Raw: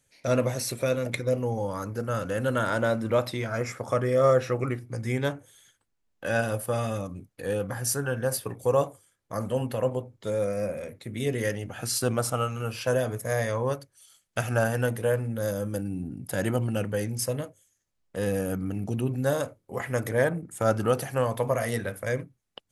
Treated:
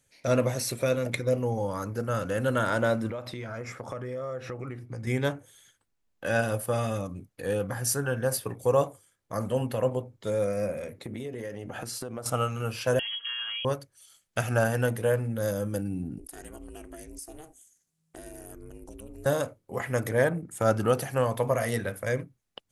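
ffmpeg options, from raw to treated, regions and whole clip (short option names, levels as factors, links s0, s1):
-filter_complex "[0:a]asettb=1/sr,asplit=3[s0][s1][s2];[s0]atrim=end=3.104[s3];[s1]atrim=start=3.1:end=5.07,asetpts=PTS-STARTPTS,afade=t=in:d=0.004:c=qsin,afade=t=out:st=1.966:d=0.004:c=qsin,highshelf=f=6600:g=-9,acompressor=threshold=0.0224:ratio=5:attack=3.2:release=140:knee=1:detection=peak[s4];[s2]atrim=start=5.066[s5];[s3][s4]acrossfade=d=0.004:c1=hsin:c2=qsin[s6];[s6][s5]acrossfade=d=0.004:c1=qsin:c2=hsin,asettb=1/sr,asplit=3[s7][s8][s9];[s7]atrim=end=10.984[s10];[s8]atrim=start=10.98:end=12.26,asetpts=PTS-STARTPTS,afade=t=in:d=0.004:c=qsin,afade=t=out:st=1.276:d=0.004:c=qsin,equalizer=f=490:w=0.38:g=8.5,acompressor=threshold=0.0251:ratio=16:attack=3.2:release=140:knee=1:detection=peak[s11];[s9]atrim=start=12.256[s12];[s10][s11]acrossfade=d=0.004:c1=hsin:c2=qsin[s13];[s13][s12]acrossfade=d=0.004:c1=qsin:c2=hsin,asettb=1/sr,asplit=3[s14][s15][s16];[s14]atrim=end=12.994[s17];[s15]atrim=start=12.99:end=13.65,asetpts=PTS-STARTPTS,afade=t=in:d=0.004:c=qsin,afade=t=out:st=0.656:d=0.004:c=qsin,acompressor=threshold=0.0282:ratio=12:attack=3.2:release=140:knee=1:detection=peak,lowpass=f=2900:t=q:w=0.5098,lowpass=f=2900:t=q:w=0.6013,lowpass=f=2900:t=q:w=0.9,lowpass=f=2900:t=q:w=2.563,afreqshift=-3400,aecho=1:1:4.3:0.63,atrim=end_sample=29106[s18];[s16]atrim=start=13.646[s19];[s17][s18]acrossfade=d=0.004:c1=hsin:c2=qsin[s20];[s20][s19]acrossfade=d=0.004:c1=qsin:c2=hsin,asettb=1/sr,asplit=3[s21][s22][s23];[s21]atrim=end=16.184[s24];[s22]atrim=start=16.18:end=19.26,asetpts=PTS-STARTPTS,afade=t=in:d=0.004:c=qsin,afade=t=out:st=3.076:d=0.004:c=qsin,equalizer=f=9000:w=0.75:g=13,acompressor=threshold=0.01:ratio=4:attack=3.2:release=140:knee=1:detection=peak,aeval=exprs='val(0)*sin(2*PI*160*n/s)':c=same[s25];[s23]atrim=start=19.256[s26];[s24][s25]acrossfade=d=0.004:c1=hsin:c2=qsin[s27];[s27][s26]acrossfade=d=0.004:c1=qsin:c2=hsin"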